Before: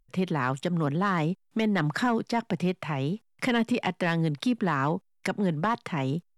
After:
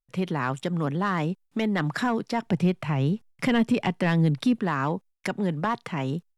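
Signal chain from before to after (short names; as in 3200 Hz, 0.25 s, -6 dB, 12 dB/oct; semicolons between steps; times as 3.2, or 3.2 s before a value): gate with hold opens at -58 dBFS; 2.46–4.57 low shelf 190 Hz +10 dB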